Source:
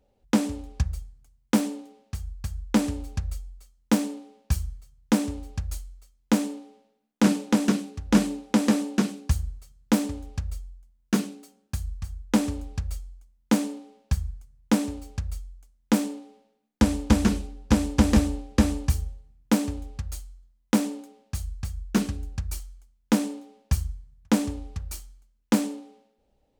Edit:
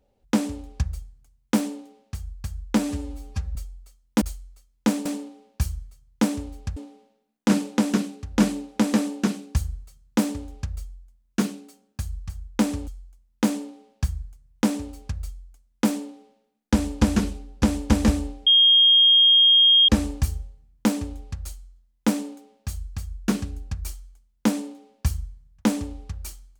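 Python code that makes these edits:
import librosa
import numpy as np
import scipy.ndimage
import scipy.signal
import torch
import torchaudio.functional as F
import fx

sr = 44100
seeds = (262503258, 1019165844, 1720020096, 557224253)

y = fx.edit(x, sr, fx.stretch_span(start_s=2.79, length_s=0.51, factor=1.5),
    fx.move(start_s=5.67, length_s=0.84, to_s=3.96),
    fx.cut(start_s=12.62, length_s=0.34),
    fx.insert_tone(at_s=18.55, length_s=1.42, hz=3240.0, db=-12.0), tone=tone)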